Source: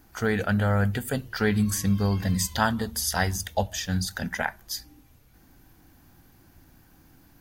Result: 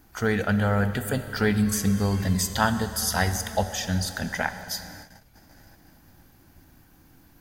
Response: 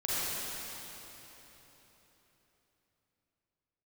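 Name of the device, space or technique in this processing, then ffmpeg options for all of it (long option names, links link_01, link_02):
keyed gated reverb: -filter_complex "[0:a]asplit=3[link_01][link_02][link_03];[1:a]atrim=start_sample=2205[link_04];[link_02][link_04]afir=irnorm=-1:irlink=0[link_05];[link_03]apad=whole_len=326622[link_06];[link_05][link_06]sidechaingate=range=-33dB:threshold=-54dB:ratio=16:detection=peak,volume=-17.5dB[link_07];[link_01][link_07]amix=inputs=2:normalize=0"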